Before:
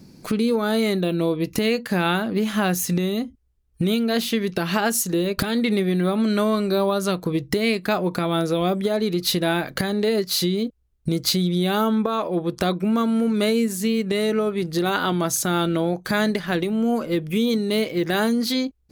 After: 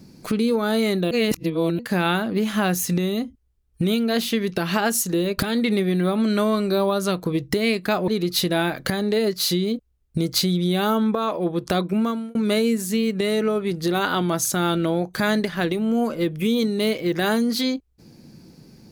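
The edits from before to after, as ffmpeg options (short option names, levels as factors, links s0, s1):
-filter_complex "[0:a]asplit=5[s0][s1][s2][s3][s4];[s0]atrim=end=1.112[s5];[s1]atrim=start=1.108:end=1.792,asetpts=PTS-STARTPTS,areverse[s6];[s2]atrim=start=1.788:end=8.082[s7];[s3]atrim=start=8.988:end=13.26,asetpts=PTS-STARTPTS,afade=t=out:st=3.912:d=0.36[s8];[s4]atrim=start=13.26,asetpts=PTS-STARTPTS,afade=t=in:d=0.004:c=hsin[s9];[s5][s6]acrossfade=d=0.004:c1=hsin:c2=hsin[s10];[s10][s7]acrossfade=d=0.004:c1=hsin:c2=hsin[s11];[s8][s9]concat=n=2:v=0:a=1[s12];[s11][s12]acrossfade=d=0.004:c1=hsin:c2=hsin"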